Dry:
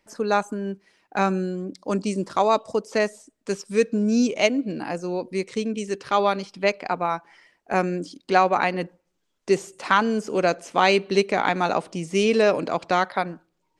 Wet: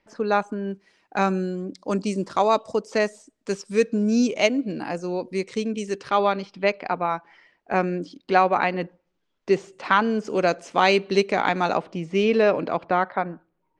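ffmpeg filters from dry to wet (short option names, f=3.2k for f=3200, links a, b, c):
-af "asetnsamples=n=441:p=0,asendcmd='0.71 lowpass f 8300;6.1 lowpass f 4000;10.25 lowpass f 7100;11.77 lowpass f 3200;12.82 lowpass f 1900',lowpass=3.9k"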